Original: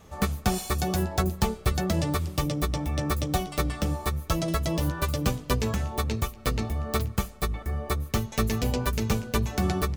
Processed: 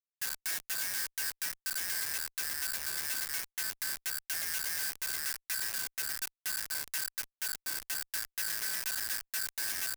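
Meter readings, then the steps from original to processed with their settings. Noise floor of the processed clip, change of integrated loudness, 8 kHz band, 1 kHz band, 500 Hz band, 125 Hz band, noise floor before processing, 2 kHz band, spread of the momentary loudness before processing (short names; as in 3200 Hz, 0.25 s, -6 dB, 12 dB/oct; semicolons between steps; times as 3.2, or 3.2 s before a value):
under -85 dBFS, -5.0 dB, +2.5 dB, -18.0 dB, -26.0 dB, -36.0 dB, -44 dBFS, -1.0 dB, 4 LU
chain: four-band scrambler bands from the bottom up 2143; bell 610 Hz -14 dB 0.33 oct; Schmitt trigger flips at -25.5 dBFS; pre-emphasis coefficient 0.97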